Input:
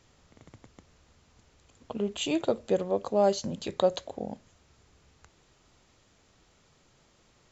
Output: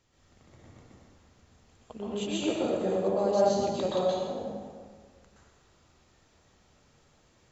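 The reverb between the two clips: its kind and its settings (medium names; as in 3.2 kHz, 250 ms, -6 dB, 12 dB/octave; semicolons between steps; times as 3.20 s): plate-style reverb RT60 1.7 s, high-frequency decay 0.65×, pre-delay 110 ms, DRR -8 dB; trim -8.5 dB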